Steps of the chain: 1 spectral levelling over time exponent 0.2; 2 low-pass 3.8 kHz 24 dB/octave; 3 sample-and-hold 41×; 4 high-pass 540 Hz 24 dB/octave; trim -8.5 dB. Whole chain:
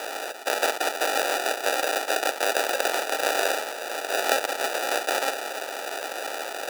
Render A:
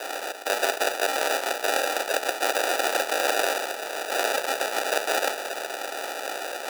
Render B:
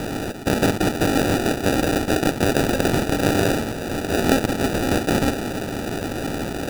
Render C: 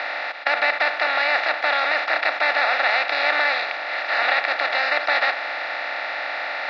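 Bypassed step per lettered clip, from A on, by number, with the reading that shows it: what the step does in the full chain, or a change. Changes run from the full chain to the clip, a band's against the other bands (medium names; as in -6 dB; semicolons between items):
2, crest factor change -3.0 dB; 4, 250 Hz band +21.0 dB; 3, crest factor change -7.5 dB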